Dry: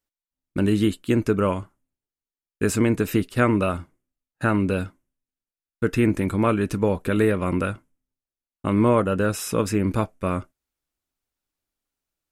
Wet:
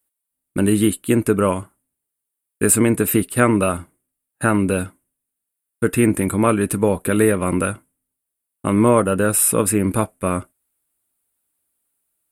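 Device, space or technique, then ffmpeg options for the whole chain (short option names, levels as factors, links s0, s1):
budget condenser microphone: -af "highpass=f=100:p=1,highshelf=f=7500:t=q:w=3:g=9,volume=1.68"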